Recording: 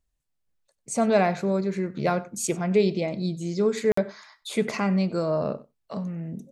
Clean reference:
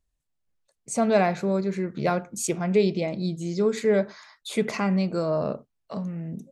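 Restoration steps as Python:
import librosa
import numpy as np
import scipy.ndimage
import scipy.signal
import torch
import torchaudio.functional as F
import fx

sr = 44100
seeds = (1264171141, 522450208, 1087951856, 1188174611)

y = fx.fix_interpolate(x, sr, at_s=(3.92,), length_ms=54.0)
y = fx.fix_echo_inverse(y, sr, delay_ms=95, level_db=-21.5)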